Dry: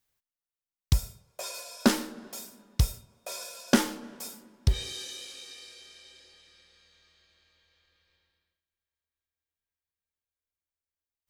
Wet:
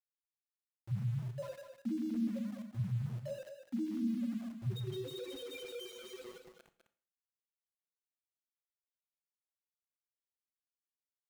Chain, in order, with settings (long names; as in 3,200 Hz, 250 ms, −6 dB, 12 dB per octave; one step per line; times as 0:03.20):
brick-wall band-pass 110–6,800 Hz
spectral tilt −4 dB per octave
reversed playback
downward compressor 16 to 1, threshold −45 dBFS, peak gain reduction 37.5 dB
reversed playback
brickwall limiter −43.5 dBFS, peak gain reduction 8 dB
automatic gain control gain up to 15.5 dB
in parallel at −8 dB: soft clipping −38.5 dBFS, distortion −9 dB
on the sum: spectral peaks only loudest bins 2
low-pass that shuts in the quiet parts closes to 910 Hz, open at −42 dBFS
centre clipping without the shift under −50.5 dBFS
single-tap delay 204 ms −8.5 dB
four-comb reverb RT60 0.47 s, combs from 27 ms, DRR 11.5 dB
level +1 dB